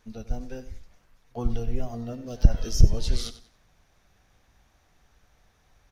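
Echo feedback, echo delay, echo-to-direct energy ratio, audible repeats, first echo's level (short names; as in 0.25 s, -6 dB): 29%, 94 ms, -14.0 dB, 2, -14.5 dB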